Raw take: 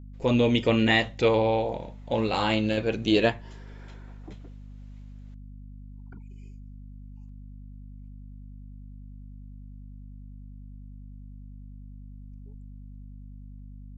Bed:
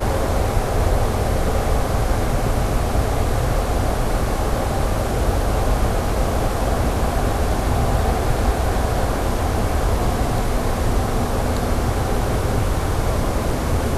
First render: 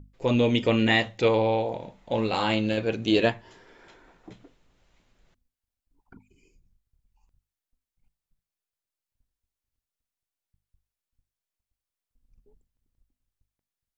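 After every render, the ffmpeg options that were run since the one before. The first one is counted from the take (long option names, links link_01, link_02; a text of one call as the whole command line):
ffmpeg -i in.wav -af "bandreject=frequency=50:width_type=h:width=6,bandreject=frequency=100:width_type=h:width=6,bandreject=frequency=150:width_type=h:width=6,bandreject=frequency=200:width_type=h:width=6,bandreject=frequency=250:width_type=h:width=6" out.wav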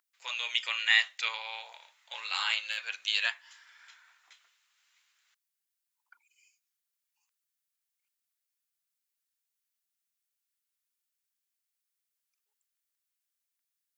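ffmpeg -i in.wav -af "highpass=frequency=1300:width=0.5412,highpass=frequency=1300:width=1.3066,highshelf=frequency=6200:gain=7" out.wav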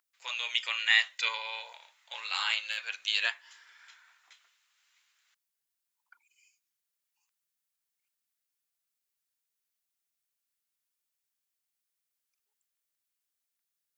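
ffmpeg -i in.wav -filter_complex "[0:a]asettb=1/sr,asplit=3[link_01][link_02][link_03];[link_01]atrim=end=1.124[link_04];[link_02]atrim=start=1.12:end=1.73,asetpts=PTS-STARTPTS,afade=type=in:duration=0.004:curve=qsin,afade=type=out:start_time=0.606:duration=0.004:curve=qsin,aecho=1:1:2:0.65,atrim=end_sample=26901[link_05];[link_03]atrim=start=1.726[link_06];[link_04][link_05]acrossfade=duration=0.004:curve1=hsin:curve2=qsin[link_07];[link_07][link_06]acrossfade=duration=0.004:curve1=qsin:curve2=hsin,asettb=1/sr,asplit=3[link_08][link_09][link_10];[link_08]atrim=end=3.214[link_11];[link_09]atrim=start=3.21:end=3.73,asetpts=PTS-STARTPTS,afade=type=in:duration=0.004:curve=qsin,afade=type=out:start_time=0.516:duration=0.004:curve=qsin,equalizer=frequency=340:width_type=o:width=0.77:gain=12[link_12];[link_10]atrim=start=3.726[link_13];[link_11][link_12]acrossfade=duration=0.004:curve1=hsin:curve2=qsin[link_14];[link_14][link_13]acrossfade=duration=0.004:curve1=qsin:curve2=hsin" out.wav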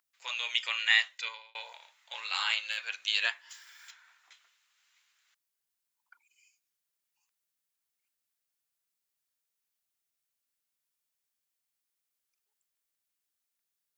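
ffmpeg -i in.wav -filter_complex "[0:a]asplit=3[link_01][link_02][link_03];[link_01]afade=type=out:start_time=3.49:duration=0.02[link_04];[link_02]aemphasis=mode=production:type=75fm,afade=type=in:start_time=3.49:duration=0.02,afade=type=out:start_time=3.9:duration=0.02[link_05];[link_03]afade=type=in:start_time=3.9:duration=0.02[link_06];[link_04][link_05][link_06]amix=inputs=3:normalize=0,asplit=2[link_07][link_08];[link_07]atrim=end=1.55,asetpts=PTS-STARTPTS,afade=type=out:start_time=0.91:duration=0.64[link_09];[link_08]atrim=start=1.55,asetpts=PTS-STARTPTS,afade=type=in:duration=0.004:curve=hsin[link_10];[link_09][link_10]concat=n=2:v=0:a=1" out.wav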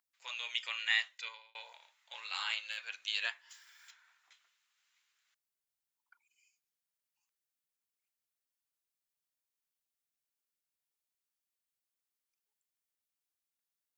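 ffmpeg -i in.wav -af "volume=-6.5dB" out.wav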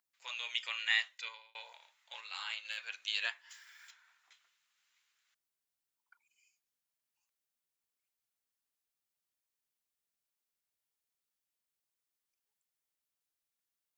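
ffmpeg -i in.wav -filter_complex "[0:a]asettb=1/sr,asplit=3[link_01][link_02][link_03];[link_01]atrim=end=3.444[link_04];[link_02]atrim=start=3.44:end=3.87,asetpts=PTS-STARTPTS,afade=type=in:duration=0.004:curve=qsin,afade=type=out:start_time=0.426:duration=0.004:curve=qsin,equalizer=frequency=1900:width_type=o:width=1:gain=5[link_05];[link_03]atrim=start=3.866[link_06];[link_04][link_05]acrossfade=duration=0.004:curve1=hsin:curve2=qsin[link_07];[link_07][link_06]acrossfade=duration=0.004:curve1=qsin:curve2=hsin,asplit=3[link_08][link_09][link_10];[link_08]atrim=end=2.212[link_11];[link_09]atrim=start=2.208:end=2.652,asetpts=PTS-STARTPTS,volume=-4.5dB[link_12];[link_10]atrim=start=2.648[link_13];[link_11][link_12]acrossfade=duration=0.004:curve1=hsin:curve2=hsin[link_14];[link_14][link_13]acrossfade=duration=0.004:curve1=hsin:curve2=hsin" out.wav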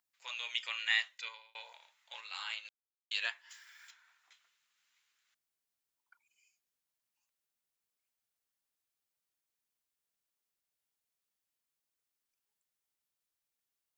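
ffmpeg -i in.wav -filter_complex "[0:a]asplit=3[link_01][link_02][link_03];[link_01]atrim=end=2.69,asetpts=PTS-STARTPTS,afade=type=out:start_time=2.686:duration=0.004:curve=hsin[link_04];[link_02]atrim=start=2.69:end=3.11,asetpts=PTS-STARTPTS,volume=0[link_05];[link_03]atrim=start=3.11,asetpts=PTS-STARTPTS,afade=type=in:duration=0.004:curve=hsin[link_06];[link_04][link_05][link_06]concat=n=3:v=0:a=1" out.wav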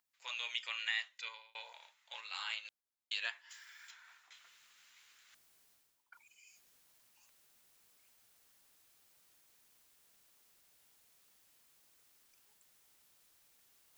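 ffmpeg -i in.wav -af "alimiter=limit=-23dB:level=0:latency=1:release=453,areverse,acompressor=mode=upward:threshold=-52dB:ratio=2.5,areverse" out.wav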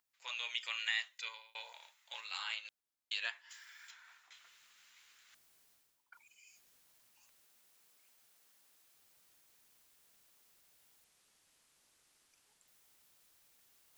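ffmpeg -i in.wav -filter_complex "[0:a]asettb=1/sr,asplit=3[link_01][link_02][link_03];[link_01]atrim=end=0.614[link_04];[link_02]atrim=start=0.61:end=2.38,asetpts=PTS-STARTPTS,afade=type=in:duration=0.004:curve=qsin,afade=type=out:start_time=1.766:duration=0.004:curve=qsin,highshelf=frequency=6900:gain=8.5[link_05];[link_03]atrim=start=2.376[link_06];[link_04][link_05]acrossfade=duration=0.004:curve1=hsin:curve2=qsin[link_07];[link_07][link_06]acrossfade=duration=0.004:curve1=qsin:curve2=hsin,asettb=1/sr,asplit=3[link_08][link_09][link_10];[link_08]atrim=end=7.444[link_11];[link_09]atrim=start=7.44:end=8.95,asetpts=PTS-STARTPTS,afade=type=in:duration=0.004:curve=qsin,afade=type=out:start_time=1.506:duration=0.004:curve=qsin,highpass=frequency=190:poles=1[link_12];[link_10]atrim=start=8.946[link_13];[link_11][link_12]acrossfade=duration=0.004:curve1=hsin:curve2=qsin[link_14];[link_14][link_13]acrossfade=duration=0.004:curve1=qsin:curve2=hsin,asettb=1/sr,asplit=3[link_15][link_16][link_17];[link_15]atrim=end=11.044[link_18];[link_16]atrim=start=11.04:end=12.68,asetpts=PTS-STARTPTS,afade=type=in:duration=0.004:curve=qsin,afade=type=out:start_time=1.636:duration=0.004:curve=qsin,lowpass=frequency=11000:width=0.5412,lowpass=frequency=11000:width=1.3066[link_19];[link_17]atrim=start=12.676[link_20];[link_18][link_19]acrossfade=duration=0.004:curve1=hsin:curve2=qsin[link_21];[link_21][link_20]acrossfade=duration=0.004:curve1=qsin:curve2=hsin" out.wav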